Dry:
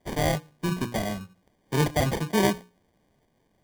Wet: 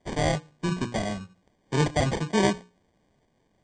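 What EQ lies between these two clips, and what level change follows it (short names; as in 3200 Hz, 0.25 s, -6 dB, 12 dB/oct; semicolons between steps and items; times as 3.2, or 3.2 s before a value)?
brick-wall FIR low-pass 8800 Hz; 0.0 dB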